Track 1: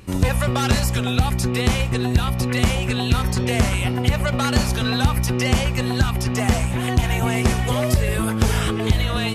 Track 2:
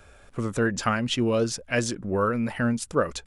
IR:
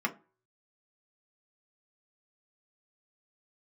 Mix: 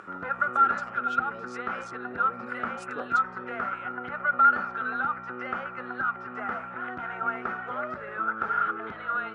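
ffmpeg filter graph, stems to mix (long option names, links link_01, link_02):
-filter_complex "[0:a]lowpass=frequency=1400:width_type=q:width=16,volume=-15dB,asplit=2[link_01][link_02];[link_02]volume=-16.5dB[link_03];[1:a]asoftclip=type=hard:threshold=-12dB,volume=-13.5dB,afade=type=in:start_time=1.99:duration=0.36:silence=0.473151[link_04];[2:a]atrim=start_sample=2205[link_05];[link_03][link_05]afir=irnorm=-1:irlink=0[link_06];[link_01][link_04][link_06]amix=inputs=3:normalize=0,acompressor=mode=upward:threshold=-35dB:ratio=2.5,highpass=310,lowpass=7600"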